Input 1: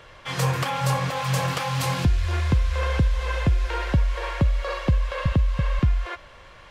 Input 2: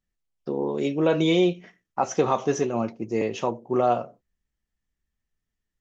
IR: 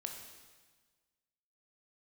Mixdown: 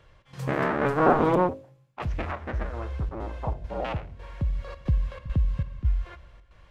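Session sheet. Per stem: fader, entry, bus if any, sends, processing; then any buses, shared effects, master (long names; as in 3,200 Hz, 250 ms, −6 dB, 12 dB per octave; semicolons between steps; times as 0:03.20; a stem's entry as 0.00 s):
−15.5 dB, 0.00 s, muted 0:01.35–0:02.02, send −8 dB, low-shelf EQ 260 Hz +11.5 dB; gate pattern "xx.xxx..xxxxx.x" 136 BPM −12 dB; automatic ducking −10 dB, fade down 0.60 s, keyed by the second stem
0:01.27 0 dB → 0:01.70 −13 dB, 0.00 s, no send, sub-harmonics by changed cycles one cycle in 2, inverted; hum removal 53.75 Hz, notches 13; auto-filter low-pass saw down 0.52 Hz 690–2,800 Hz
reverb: on, RT60 1.4 s, pre-delay 15 ms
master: no processing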